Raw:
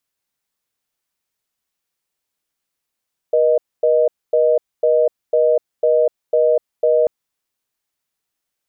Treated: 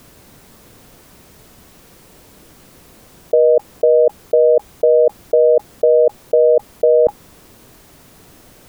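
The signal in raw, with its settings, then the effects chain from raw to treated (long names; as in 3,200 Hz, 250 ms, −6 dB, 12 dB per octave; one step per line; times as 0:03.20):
call progress tone reorder tone, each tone −14 dBFS 3.74 s
tilt shelving filter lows +9.5 dB, about 820 Hz
notch filter 830 Hz, Q 24
envelope flattener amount 100%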